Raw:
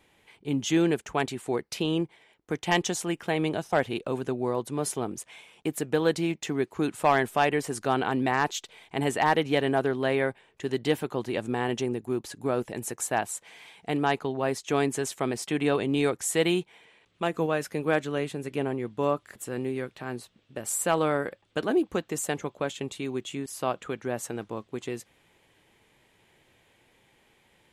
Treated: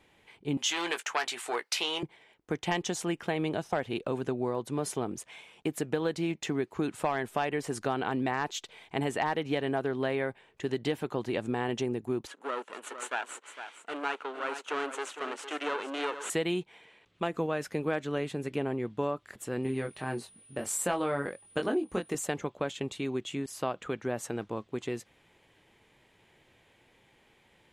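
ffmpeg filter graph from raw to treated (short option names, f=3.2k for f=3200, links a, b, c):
-filter_complex "[0:a]asettb=1/sr,asplit=3[a][b][c];[a]atrim=end=0.574[d];[b]atrim=start=0.57:end=2.03,asetpts=PTS-STARTPTS,afade=t=in:d=0.004:c=qsin,afade=t=out:st=1.456:d=0.004:c=qsin,aeval=exprs='0.251*sin(PI/2*1.78*val(0)/0.251)':c=same,highpass=990,asplit=2[e][f];[f]adelay=17,volume=-9dB[g];[e][g]amix=inputs=2:normalize=0,atrim=end_sample=64386[h];[c]atrim=start=2.026[i];[d][h]acrossfade=d=0.004:c1=hsin:c2=qsin[j];[j][i]acrossfade=d=0.004:c1=qsin:c2=hsin,asettb=1/sr,asplit=3[k][l][m];[k]atrim=end=12.274[n];[l]atrim=start=12.27:end=16.3,asetpts=PTS-STARTPTS,afade=t=in:d=0.004:c=qsin,afade=t=out:st=4.026:d=0.004:c=qsin,aeval=exprs='max(val(0),0)':c=same,highpass=f=310:w=0.5412,highpass=f=310:w=1.3066,equalizer=f=340:t=q:w=4:g=-5,equalizer=f=680:t=q:w=4:g=-4,equalizer=f=990:t=q:w=4:g=4,equalizer=f=1.4k:t=q:w=4:g=8,equalizer=f=2.9k:t=q:w=4:g=5,equalizer=f=5.1k:t=q:w=4:g=-7,lowpass=f=9.9k:w=0.5412,lowpass=f=9.9k:w=1.3066,aecho=1:1:457:0.282,atrim=end_sample=177723[o];[m]atrim=start=16.296[p];[n][o]acrossfade=d=0.004:c1=hsin:c2=qsin[q];[q][p]acrossfade=d=0.004:c1=qsin:c2=hsin,asettb=1/sr,asplit=3[r][s][t];[r]atrim=end=19.634[u];[s]atrim=start=19.63:end=22.15,asetpts=PTS-STARTPTS,afade=t=in:d=0.004:c=qsin,afade=t=out:st=2.516:d=0.004:c=qsin,aeval=exprs='val(0)+0.002*sin(2*PI*9600*n/s)':c=same,asplit=2[v][w];[w]adelay=22,volume=-4dB[x];[v][x]amix=inputs=2:normalize=0,atrim=end_sample=111132[y];[t]atrim=start=22.146[z];[u][y]acrossfade=d=0.004:c1=hsin:c2=qsin[aa];[aa][z]acrossfade=d=0.004:c1=qsin:c2=hsin,highshelf=f=8.6k:g=-8.5,acompressor=threshold=-26dB:ratio=6"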